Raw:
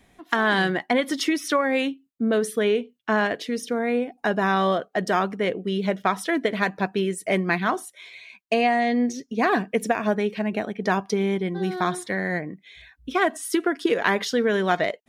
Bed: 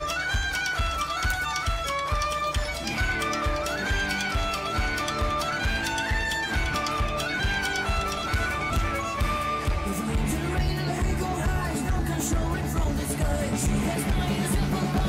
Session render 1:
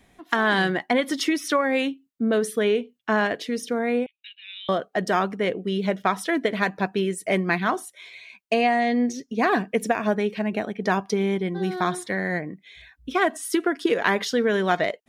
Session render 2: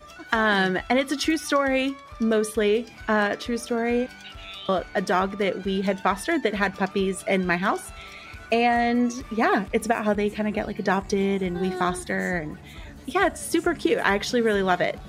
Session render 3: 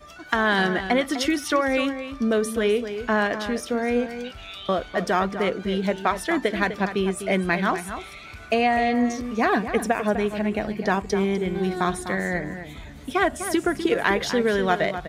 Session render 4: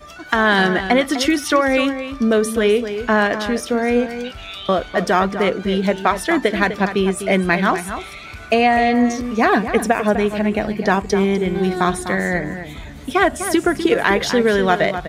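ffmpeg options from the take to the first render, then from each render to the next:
-filter_complex "[0:a]asettb=1/sr,asplit=3[a][b][c];[a]atrim=end=4.064[d];[b]atrim=start=4.06:end=4.69,asetpts=PTS-STARTPTS,afade=t=in:d=0.004:c=qsin,afade=t=out:st=0.626:d=0.004:c=qsin,asuperpass=centerf=3000:order=8:qfactor=2[e];[c]atrim=start=4.686[f];[d][e]acrossfade=d=0.004:c1=hsin:c2=qsin[g];[g][f]acrossfade=d=0.004:c1=qsin:c2=hsin"
-filter_complex "[1:a]volume=-16.5dB[a];[0:a][a]amix=inputs=2:normalize=0"
-filter_complex "[0:a]asplit=2[a][b];[b]adelay=250.7,volume=-10dB,highshelf=f=4k:g=-5.64[c];[a][c]amix=inputs=2:normalize=0"
-af "volume=6dB,alimiter=limit=-2dB:level=0:latency=1"

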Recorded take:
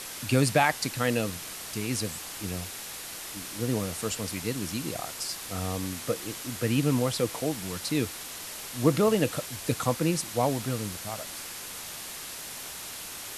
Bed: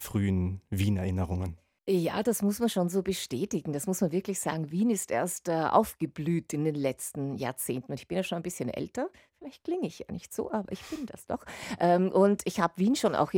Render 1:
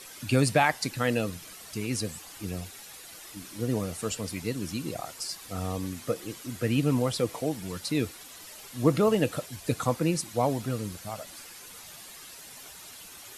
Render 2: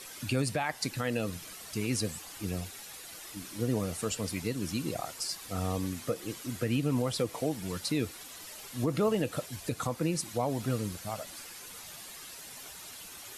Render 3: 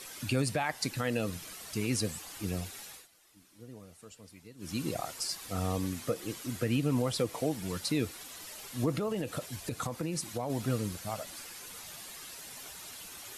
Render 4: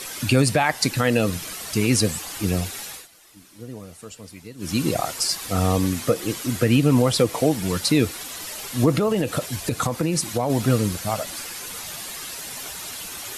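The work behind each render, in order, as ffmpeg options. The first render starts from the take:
-af "afftdn=nr=10:nf=-40"
-af "alimiter=limit=-19dB:level=0:latency=1:release=188"
-filter_complex "[0:a]asettb=1/sr,asplit=3[a][b][c];[a]atrim=end=8.984[d];[b]atrim=start=8.98:end=10.5,asetpts=PTS-STARTPTS,afade=t=in:d=0.004:c=qsin,afade=t=out:st=1.516:d=0.004:c=qsin,acompressor=threshold=-29dB:ratio=6:attack=3.2:release=140:knee=1:detection=peak[e];[c]atrim=start=10.496[f];[d][e]acrossfade=d=0.004:c1=hsin:c2=qsin[g];[g][f]acrossfade=d=0.004:c1=qsin:c2=hsin,asplit=3[h][i][j];[h]atrim=end=3.08,asetpts=PTS-STARTPTS,afade=t=out:st=2.78:d=0.3:c=qsin:silence=0.11885[k];[i]atrim=start=3.08:end=4.58,asetpts=PTS-STARTPTS,volume=-18.5dB[l];[j]atrim=start=4.58,asetpts=PTS-STARTPTS,afade=t=in:d=0.3:c=qsin:silence=0.11885[m];[k][l][m]concat=n=3:v=0:a=1"
-af "volume=12dB"

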